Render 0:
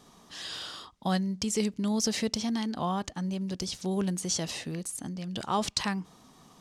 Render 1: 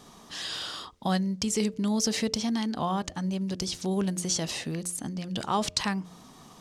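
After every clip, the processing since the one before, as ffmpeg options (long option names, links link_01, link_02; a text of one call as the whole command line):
ffmpeg -i in.wav -filter_complex "[0:a]bandreject=frequency=88.47:width_type=h:width=4,bandreject=frequency=176.94:width_type=h:width=4,bandreject=frequency=265.41:width_type=h:width=4,bandreject=frequency=353.88:width_type=h:width=4,bandreject=frequency=442.35:width_type=h:width=4,bandreject=frequency=530.82:width_type=h:width=4,bandreject=frequency=619.29:width_type=h:width=4,asplit=2[link_01][link_02];[link_02]acompressor=threshold=-39dB:ratio=6,volume=-1.5dB[link_03];[link_01][link_03]amix=inputs=2:normalize=0" out.wav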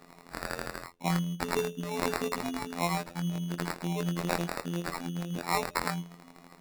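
ffmpeg -i in.wav -af "afftfilt=real='hypot(re,im)*cos(PI*b)':imag='0':win_size=2048:overlap=0.75,acrusher=samples=14:mix=1:aa=0.000001,equalizer=frequency=88:width_type=o:width=0.68:gain=-12.5,volume=2dB" out.wav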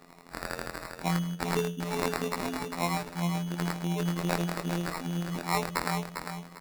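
ffmpeg -i in.wav -af "aecho=1:1:400|800|1200:0.447|0.125|0.035" out.wav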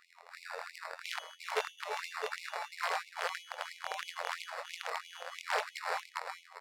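ffmpeg -i in.wav -af "aeval=exprs='(mod(11.2*val(0)+1,2)-1)/11.2':channel_layout=same,aemphasis=mode=reproduction:type=50fm,afftfilt=real='re*gte(b*sr/1024,420*pow(2100/420,0.5+0.5*sin(2*PI*3*pts/sr)))':imag='im*gte(b*sr/1024,420*pow(2100/420,0.5+0.5*sin(2*PI*3*pts/sr)))':win_size=1024:overlap=0.75" out.wav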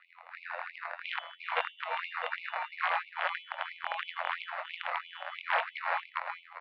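ffmpeg -i in.wav -af "highpass=frequency=550:width_type=q:width=0.5412,highpass=frequency=550:width_type=q:width=1.307,lowpass=frequency=3200:width_type=q:width=0.5176,lowpass=frequency=3200:width_type=q:width=0.7071,lowpass=frequency=3200:width_type=q:width=1.932,afreqshift=53,volume=4.5dB" out.wav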